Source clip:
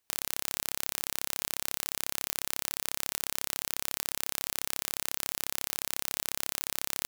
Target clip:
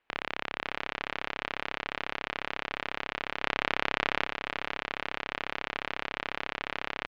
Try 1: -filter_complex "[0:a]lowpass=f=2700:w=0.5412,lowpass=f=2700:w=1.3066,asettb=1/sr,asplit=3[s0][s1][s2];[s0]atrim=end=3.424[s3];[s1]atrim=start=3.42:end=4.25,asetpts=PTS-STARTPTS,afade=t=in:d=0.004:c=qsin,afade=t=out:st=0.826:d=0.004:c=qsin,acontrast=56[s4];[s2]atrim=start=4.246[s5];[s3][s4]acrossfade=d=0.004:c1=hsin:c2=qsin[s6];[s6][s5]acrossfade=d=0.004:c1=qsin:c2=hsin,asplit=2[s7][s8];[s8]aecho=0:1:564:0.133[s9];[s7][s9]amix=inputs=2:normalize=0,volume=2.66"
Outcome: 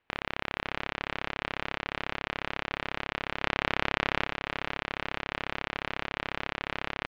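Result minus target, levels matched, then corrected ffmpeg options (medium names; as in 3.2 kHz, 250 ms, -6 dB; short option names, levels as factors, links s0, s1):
125 Hz band +7.0 dB
-filter_complex "[0:a]lowpass=f=2700:w=0.5412,lowpass=f=2700:w=1.3066,equalizer=f=92:w=0.48:g=-9,asettb=1/sr,asplit=3[s0][s1][s2];[s0]atrim=end=3.424[s3];[s1]atrim=start=3.42:end=4.25,asetpts=PTS-STARTPTS,afade=t=in:d=0.004:c=qsin,afade=t=out:st=0.826:d=0.004:c=qsin,acontrast=56[s4];[s2]atrim=start=4.246[s5];[s3][s4]acrossfade=d=0.004:c1=hsin:c2=qsin[s6];[s6][s5]acrossfade=d=0.004:c1=qsin:c2=hsin,asplit=2[s7][s8];[s8]aecho=0:1:564:0.133[s9];[s7][s9]amix=inputs=2:normalize=0,volume=2.66"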